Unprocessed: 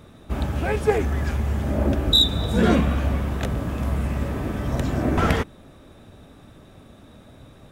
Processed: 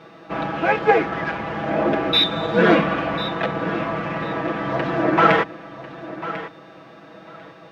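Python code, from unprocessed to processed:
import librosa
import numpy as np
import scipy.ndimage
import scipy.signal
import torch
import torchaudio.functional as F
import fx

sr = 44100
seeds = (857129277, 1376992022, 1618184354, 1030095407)

p1 = scipy.ndimage.median_filter(x, 9, mode='constant')
p2 = fx.weighting(p1, sr, curve='A')
p3 = p2 + fx.echo_feedback(p2, sr, ms=1046, feedback_pct=17, wet_db=-14, dry=0)
p4 = fx.dmg_buzz(p3, sr, base_hz=400.0, harmonics=40, level_db=-62.0, tilt_db=-1, odd_only=False)
p5 = fx.air_absorb(p4, sr, metres=240.0)
p6 = fx.hum_notches(p5, sr, base_hz=60, count=2)
p7 = p6 + 0.97 * np.pad(p6, (int(6.1 * sr / 1000.0), 0))[:len(p6)]
y = F.gain(torch.from_numpy(p7), 8.0).numpy()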